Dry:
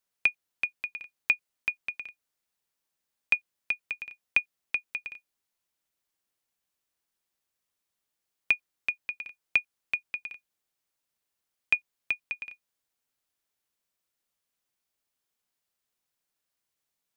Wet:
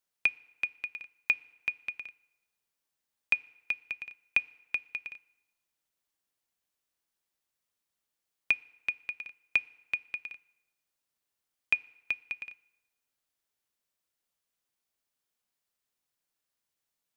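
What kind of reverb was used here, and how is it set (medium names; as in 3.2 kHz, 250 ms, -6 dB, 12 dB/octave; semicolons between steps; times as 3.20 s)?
FDN reverb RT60 1.1 s, low-frequency decay 0.75×, high-frequency decay 0.75×, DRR 19.5 dB; trim -2 dB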